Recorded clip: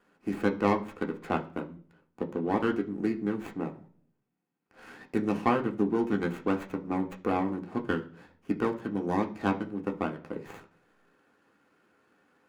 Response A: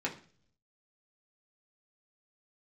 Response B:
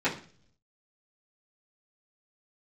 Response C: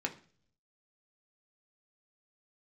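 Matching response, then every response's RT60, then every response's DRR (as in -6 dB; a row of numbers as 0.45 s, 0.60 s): C; 0.45 s, 0.45 s, 0.45 s; -3.0 dB, -12.0 dB, 2.0 dB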